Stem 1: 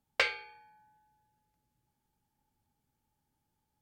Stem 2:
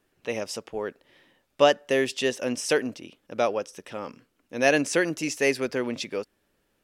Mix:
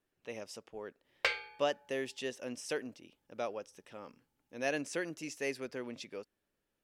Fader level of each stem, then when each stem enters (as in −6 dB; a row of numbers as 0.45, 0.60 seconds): −3.0, −13.5 decibels; 1.05, 0.00 seconds